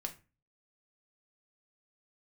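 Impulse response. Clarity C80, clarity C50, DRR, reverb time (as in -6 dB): 20.0 dB, 14.5 dB, 3.5 dB, 0.30 s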